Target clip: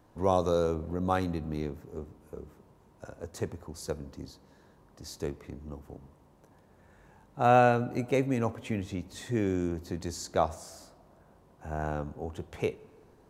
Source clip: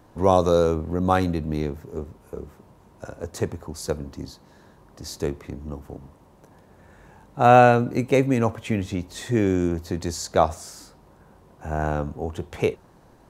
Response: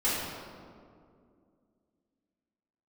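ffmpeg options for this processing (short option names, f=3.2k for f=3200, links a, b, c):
-filter_complex "[0:a]asplit=2[a][b];[1:a]atrim=start_sample=2205,adelay=16[c];[b][c]afir=irnorm=-1:irlink=0,volume=-32dB[d];[a][d]amix=inputs=2:normalize=0,volume=-8dB"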